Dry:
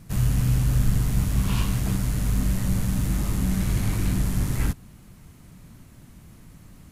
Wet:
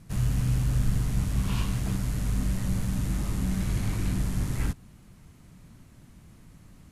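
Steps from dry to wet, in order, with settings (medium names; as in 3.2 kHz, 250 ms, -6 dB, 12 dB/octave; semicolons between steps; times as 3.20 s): Bessel low-pass 11 kHz, order 2; trim -4 dB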